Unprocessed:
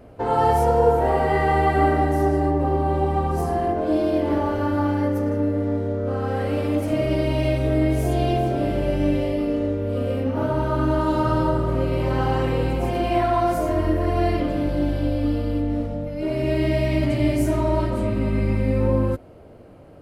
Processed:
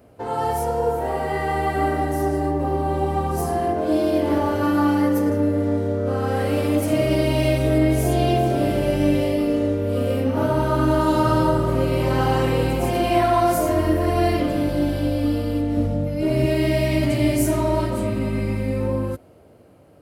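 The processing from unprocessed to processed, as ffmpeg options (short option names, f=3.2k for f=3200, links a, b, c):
-filter_complex "[0:a]asettb=1/sr,asplit=3[a][b][c];[a]atrim=end=4.624[d];[b]atrim=start=4.62:end=5.3,asetpts=PTS-STARTPTS,afade=t=in:d=0.004:c=qsin,afade=t=out:st=0.676:d=0.004:c=qsin,aecho=1:1:6.1:0.65,atrim=end_sample=29988[e];[c]atrim=start=5.296[f];[d][e]acrossfade=d=0.004:c1=hsin:c2=qsin[g];[g][f]acrossfade=d=0.004:c1=qsin:c2=hsin,asettb=1/sr,asplit=3[h][i][j];[h]atrim=end=7.784[k];[i]atrim=start=7.78:end=8.5,asetpts=PTS-STARTPTS,afade=t=in:d=0.004:c=qsin,afade=t=out:st=0.716:d=0.004:c=qsin,highshelf=f=5.7k:g=-4.5[l];[j]atrim=start=8.496[m];[k][l]acrossfade=d=0.004:c1=hsin:c2=qsin[n];[n][m]acrossfade=d=0.004:c1=qsin:c2=hsin,asettb=1/sr,asplit=3[o][p][q];[o]atrim=end=15.774[r];[p]atrim=start=15.77:end=16.46,asetpts=PTS-STARTPTS,afade=t=in:d=0.004:c=qsin,afade=t=out:st=0.686:d=0.004:c=qsin,lowshelf=f=220:g=8.5[s];[q]atrim=start=16.456[t];[r][s]acrossfade=d=0.004:c1=hsin:c2=qsin[u];[u][t]acrossfade=d=0.004:c1=qsin:c2=hsin,dynaudnorm=f=360:g=11:m=10dB,highpass=68,highshelf=f=5.7k:g=11.5,volume=-5dB"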